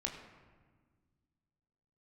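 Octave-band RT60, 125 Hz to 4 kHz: 2.5, 2.4, 1.6, 1.4, 1.3, 0.85 seconds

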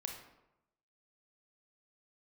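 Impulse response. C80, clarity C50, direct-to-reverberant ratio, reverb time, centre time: 8.0 dB, 5.0 dB, 2.0 dB, 0.90 s, 31 ms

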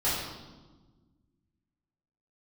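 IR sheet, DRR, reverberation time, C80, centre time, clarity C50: −11.5 dB, 1.3 s, 3.0 dB, 76 ms, 0.0 dB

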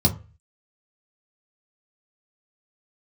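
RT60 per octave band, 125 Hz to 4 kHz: 0.50, 0.30, 0.35, 0.35, 0.35, 0.20 seconds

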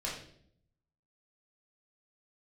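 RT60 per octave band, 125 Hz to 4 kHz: 1.1, 0.95, 0.75, 0.50, 0.55, 0.55 seconds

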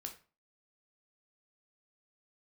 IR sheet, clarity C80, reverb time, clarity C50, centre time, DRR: 16.5 dB, 0.35 s, 11.0 dB, 13 ms, 3.0 dB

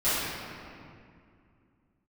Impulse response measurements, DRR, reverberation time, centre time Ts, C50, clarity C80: −16.0 dB, 2.3 s, 158 ms, −4.0 dB, −1.5 dB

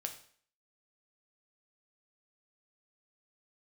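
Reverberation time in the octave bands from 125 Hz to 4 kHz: 0.45, 0.50, 0.55, 0.50, 0.50, 0.50 seconds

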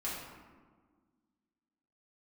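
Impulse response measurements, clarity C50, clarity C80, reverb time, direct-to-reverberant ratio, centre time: 0.5 dB, 3.0 dB, 1.6 s, −8.0 dB, 78 ms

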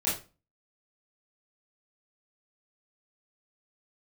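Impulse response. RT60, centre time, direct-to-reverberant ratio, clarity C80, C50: 0.30 s, 38 ms, −9.5 dB, 12.0 dB, 5.5 dB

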